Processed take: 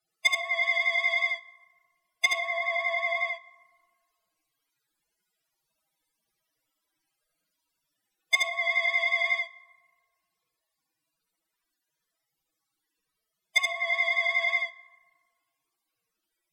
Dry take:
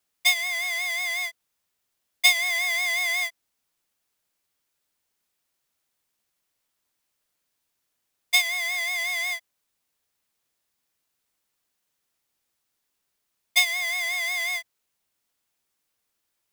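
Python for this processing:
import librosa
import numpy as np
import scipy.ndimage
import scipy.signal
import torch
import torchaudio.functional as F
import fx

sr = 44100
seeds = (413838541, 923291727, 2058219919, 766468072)

p1 = fx.spec_topn(x, sr, count=64)
p2 = fx.high_shelf(p1, sr, hz=4200.0, db=-3.5)
p3 = fx.env_lowpass_down(p2, sr, base_hz=1100.0, full_db=-22.5)
p4 = fx.peak_eq(p3, sr, hz=6700.0, db=-2.5, octaves=0.23)
p5 = fx.rider(p4, sr, range_db=10, speed_s=0.5)
p6 = p4 + (p5 * librosa.db_to_amplitude(-3.0))
p7 = p6 + 0.91 * np.pad(p6, (int(6.2 * sr / 1000.0), 0))[:len(p6)]
p8 = np.clip(p7, -10.0 ** (-12.0 / 20.0), 10.0 ** (-12.0 / 20.0))
p9 = p8 + fx.echo_single(p8, sr, ms=75, db=-3.0, dry=0)
p10 = fx.rev_fdn(p9, sr, rt60_s=1.7, lf_ratio=1.1, hf_ratio=0.4, size_ms=27.0, drr_db=14.5)
y = p10 * librosa.db_to_amplitude(-1.0)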